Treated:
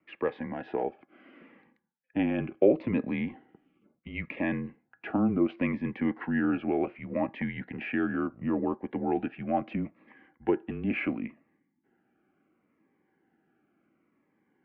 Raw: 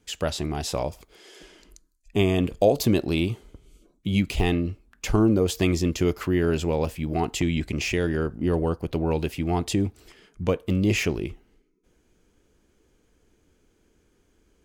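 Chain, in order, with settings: small resonant body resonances 900/1800 Hz, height 10 dB, ringing for 90 ms; mistuned SSB -120 Hz 360–2400 Hz; cascading phaser falling 0.71 Hz

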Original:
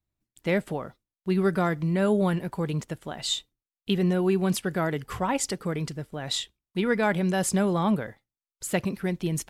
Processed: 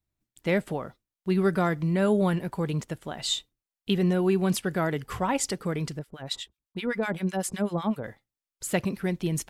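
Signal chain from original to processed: 5.99–8.04 harmonic tremolo 7.9 Hz, depth 100%, crossover 1100 Hz

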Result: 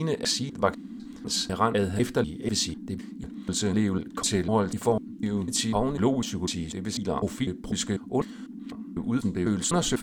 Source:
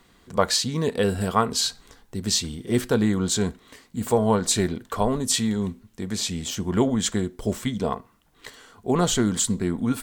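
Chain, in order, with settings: slices in reverse order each 0.249 s, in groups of 4; high shelf 12000 Hz -9.5 dB; band noise 190–300 Hz -37 dBFS; gain -3 dB

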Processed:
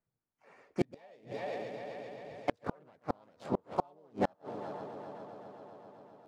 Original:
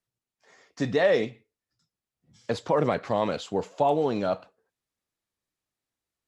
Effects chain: Wiener smoothing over 15 samples; multi-head echo 0.131 s, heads first and third, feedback 73%, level -21.5 dB; harmoniser +4 st -3 dB, +7 st -15 dB; flipped gate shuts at -16 dBFS, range -37 dB

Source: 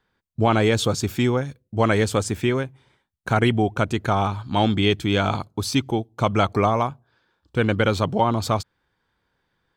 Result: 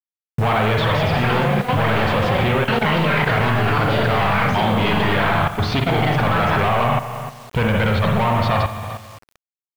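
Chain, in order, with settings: sample leveller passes 5; spring tank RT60 1.2 s, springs 42/55 ms, chirp 45 ms, DRR 0 dB; echoes that change speed 0.508 s, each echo +6 st, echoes 2; in parallel at +2.5 dB: compressor 8:1, threshold -19 dBFS, peak gain reduction 18 dB; on the sum: bell 310 Hz -11 dB 0.82 oct; level quantiser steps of 11 dB; LPF 3400 Hz 24 dB/oct; requantised 6-bit, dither none; gain -6 dB

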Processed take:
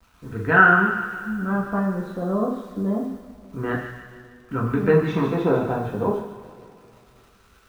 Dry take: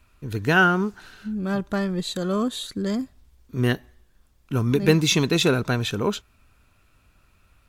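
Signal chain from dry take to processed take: LFO low-pass sine 0.29 Hz 800–1600 Hz; bit-crush 9-bit; on a send: thin delay 0.15 s, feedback 49%, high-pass 1600 Hz, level -6.5 dB; on the sum: two-slope reverb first 0.56 s, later 3 s, from -18 dB, DRR -2.5 dB; gain -5 dB

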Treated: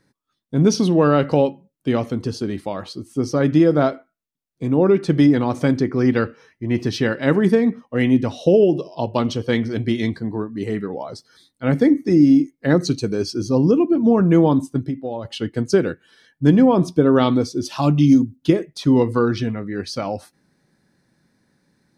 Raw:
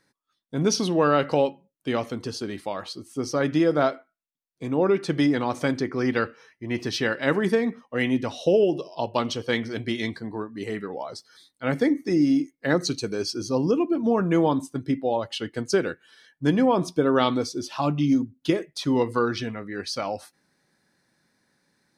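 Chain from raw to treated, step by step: low shelf 400 Hz +11.5 dB; 14.8–15.25 compressor 3:1, threshold -25 dBFS, peak gain reduction 10.5 dB; 17.65–18.36 high shelf 3700 Hz +10.5 dB

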